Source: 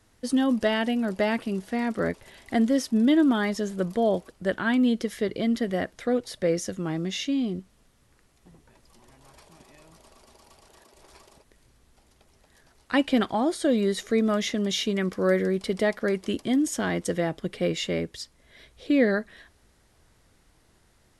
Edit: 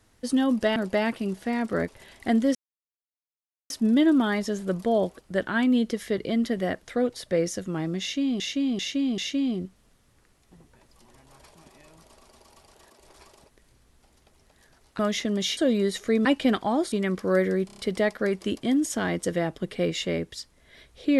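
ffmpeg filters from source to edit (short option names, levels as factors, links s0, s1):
-filter_complex "[0:a]asplit=14[s0][s1][s2][s3][s4][s5][s6][s7][s8][s9][s10][s11][s12][s13];[s0]atrim=end=0.762[s14];[s1]atrim=start=1.018:end=2.81,asetpts=PTS-STARTPTS,afade=t=out:st=1.788:d=0.004:c=hsin,apad=pad_dur=1.15[s15];[s2]atrim=start=2.81:end=7.512,asetpts=PTS-STARTPTS,afade=t=in:d=0.004:c=hsin[s16];[s3]atrim=start=7.118:end=7.512[s17];[s4]atrim=start=7.118:end=7.512[s18];[s5]atrim=start=7.118:end=12.932[s19];[s6]atrim=start=14.278:end=14.862[s20];[s7]atrim=start=13.598:end=14.282[s21];[s8]atrim=start=12.928:end=13.602[s22];[s9]atrim=start=14.858:end=15.632[s23];[s10]atrim=start=15.598:end=15.632[s24];[s11]atrim=start=15.598:end=15.632[s25];[s12]atrim=start=15.598:end=15.632[s26];[s13]atrim=start=15.598[s27];[s15][s16]concat=n=2:v=0:a=1[s28];[s14][s28]acrossfade=d=0.004:c1=hsin:c2=hsin[s29];[s29][s17]acrossfade=d=0.004:c1=hsin:c2=hsin[s30];[s30][s18]acrossfade=d=0.004:c1=hsin:c2=hsin[s31];[s31][s19]acrossfade=d=0.004:c1=hsin:c2=hsin[s32];[s32][s20]acrossfade=d=0.004:c1=hsin:c2=hsin[s33];[s33][s21]acrossfade=d=0.004:c1=hsin:c2=hsin[s34];[s34][s22]acrossfade=d=0.004:c1=hsin:c2=hsin[s35];[s35][s23]acrossfade=d=0.004:c1=hsin:c2=hsin[s36];[s36][s24]acrossfade=d=0.004:c1=hsin:c2=hsin[s37];[s37][s25]acrossfade=d=0.004:c1=hsin:c2=hsin[s38];[s38][s26]acrossfade=d=0.004:c1=hsin:c2=hsin[s39];[s39][s27]acrossfade=d=0.004:c1=hsin:c2=hsin"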